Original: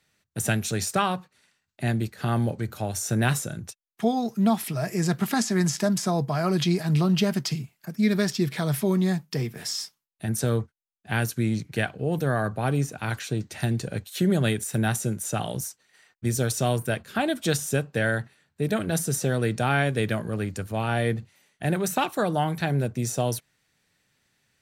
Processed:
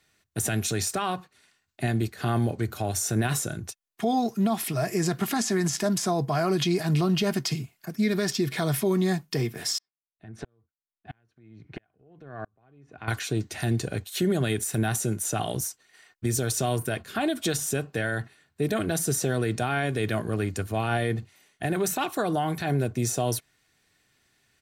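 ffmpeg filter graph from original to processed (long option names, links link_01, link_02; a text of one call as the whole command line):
ffmpeg -i in.wav -filter_complex "[0:a]asettb=1/sr,asplit=3[link_01][link_02][link_03];[link_01]atrim=end=9.784[link_04];[link_02]atrim=start=9.78:end=13.08,asetpts=PTS-STARTPTS,afade=type=in:duration=0.004:curve=qsin,afade=type=out:start_time=3.296:duration=0.004:curve=qsin,lowpass=2400,acompressor=threshold=-32dB:ratio=6:attack=3.2:release=140:knee=1:detection=peak,aeval=exprs='val(0)*pow(10,-39*if(lt(mod(-1.5*n/s,1),2*abs(-1.5)/1000),1-mod(-1.5*n/s,1)/(2*abs(-1.5)/1000),(mod(-1.5*n/s,1)-2*abs(-1.5)/1000)/(1-2*abs(-1.5)/1000))/20)':channel_layout=same[link_05];[link_03]atrim=start=13.076[link_06];[link_04][link_05]acrossfade=duration=0.004:curve1=hsin:curve2=qsin[link_07];[link_07][link_06]acrossfade=duration=0.004:curve1=qsin:curve2=hsin,aecho=1:1:2.8:0.34,alimiter=limit=-18.5dB:level=0:latency=1:release=55,volume=2dB" out.wav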